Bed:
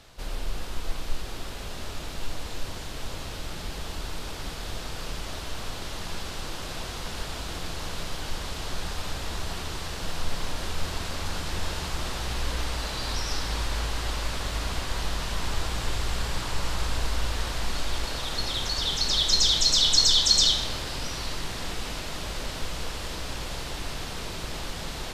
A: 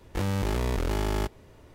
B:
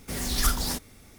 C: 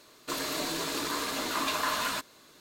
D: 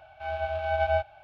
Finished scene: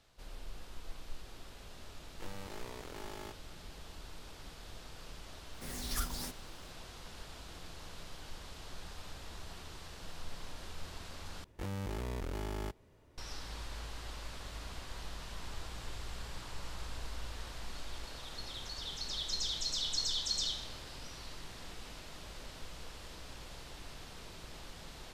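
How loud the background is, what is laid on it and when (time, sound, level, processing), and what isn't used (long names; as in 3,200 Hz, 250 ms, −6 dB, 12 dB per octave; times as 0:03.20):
bed −15 dB
0:02.05: mix in A −14 dB + high-pass filter 400 Hz 6 dB per octave
0:05.53: mix in B −12 dB
0:11.44: overwrite with A −11.5 dB
not used: C, D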